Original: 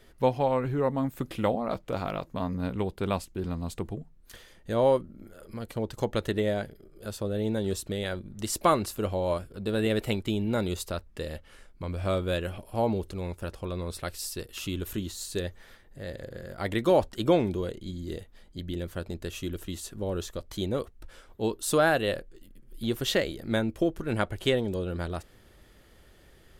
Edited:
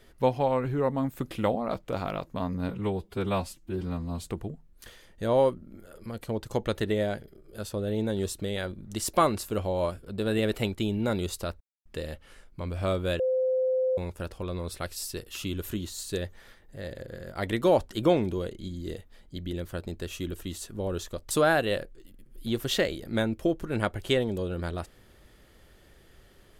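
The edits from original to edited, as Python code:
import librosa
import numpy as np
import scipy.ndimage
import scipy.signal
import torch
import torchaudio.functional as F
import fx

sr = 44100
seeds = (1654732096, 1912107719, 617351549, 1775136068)

y = fx.edit(x, sr, fx.stretch_span(start_s=2.69, length_s=1.05, factor=1.5),
    fx.insert_silence(at_s=11.08, length_s=0.25),
    fx.bleep(start_s=12.42, length_s=0.78, hz=516.0, db=-22.5),
    fx.cut(start_s=20.53, length_s=1.14), tone=tone)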